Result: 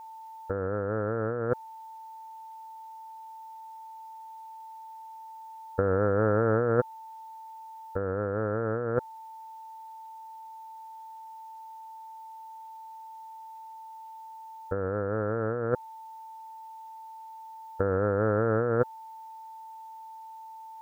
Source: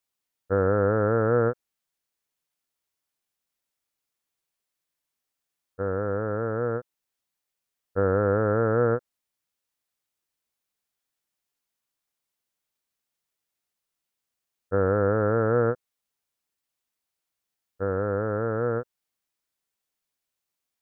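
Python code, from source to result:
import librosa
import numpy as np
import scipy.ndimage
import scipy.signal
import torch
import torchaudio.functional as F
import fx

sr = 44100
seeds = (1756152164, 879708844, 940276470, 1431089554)

y = x + 10.0 ** (-58.0 / 20.0) * np.sin(2.0 * np.pi * 890.0 * np.arange(len(x)) / sr)
y = fx.over_compress(y, sr, threshold_db=-34.0, ratio=-1.0)
y = F.gain(torch.from_numpy(y), 6.5).numpy()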